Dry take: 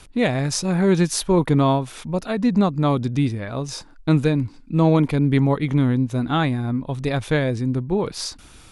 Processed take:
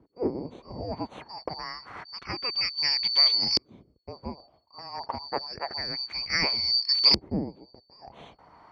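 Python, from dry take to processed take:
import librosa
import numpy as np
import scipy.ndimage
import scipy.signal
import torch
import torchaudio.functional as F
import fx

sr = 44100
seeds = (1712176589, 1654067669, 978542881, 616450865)

y = fx.band_shuffle(x, sr, order='2341')
y = fx.filter_lfo_lowpass(y, sr, shape='saw_up', hz=0.28, low_hz=340.0, high_hz=4400.0, q=2.1)
y = scipy.signal.sosfilt(scipy.signal.butter(2, 51.0, 'highpass', fs=sr, output='sos'), y)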